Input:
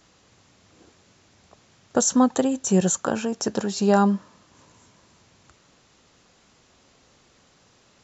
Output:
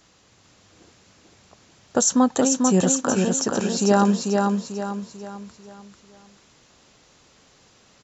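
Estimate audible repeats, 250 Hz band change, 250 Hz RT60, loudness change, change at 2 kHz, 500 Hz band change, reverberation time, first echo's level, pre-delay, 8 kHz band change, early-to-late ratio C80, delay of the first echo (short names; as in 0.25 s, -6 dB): 5, +2.0 dB, none, +1.5 dB, +2.5 dB, +2.0 dB, none, -3.5 dB, none, n/a, none, 0.443 s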